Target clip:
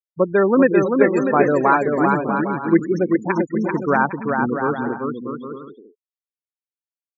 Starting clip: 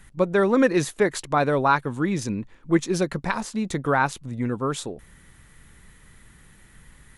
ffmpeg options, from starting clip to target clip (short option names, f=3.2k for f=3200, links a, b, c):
-filter_complex "[0:a]highpass=170,equalizer=f=310:w=1.5:g=2.5,afftfilt=real='re*gte(hypot(re,im),0.1)':imag='im*gte(hypot(re,im),0.1)':win_size=1024:overlap=0.75,asplit=2[a][b];[b]aecho=0:1:390|643.5|808.3|915.4|985:0.631|0.398|0.251|0.158|0.1[c];[a][c]amix=inputs=2:normalize=0,volume=3dB"